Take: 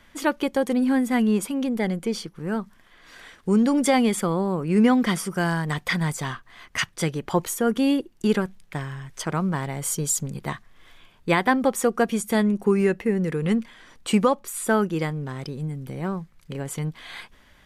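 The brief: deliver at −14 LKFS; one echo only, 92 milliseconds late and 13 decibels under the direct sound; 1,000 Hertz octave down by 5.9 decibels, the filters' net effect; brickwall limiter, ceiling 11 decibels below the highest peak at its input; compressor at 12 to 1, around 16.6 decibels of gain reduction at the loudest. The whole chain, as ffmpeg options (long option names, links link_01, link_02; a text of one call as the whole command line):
ffmpeg -i in.wav -af "equalizer=frequency=1000:width_type=o:gain=-8,acompressor=threshold=-32dB:ratio=12,alimiter=level_in=7.5dB:limit=-24dB:level=0:latency=1,volume=-7.5dB,aecho=1:1:92:0.224,volume=26dB" out.wav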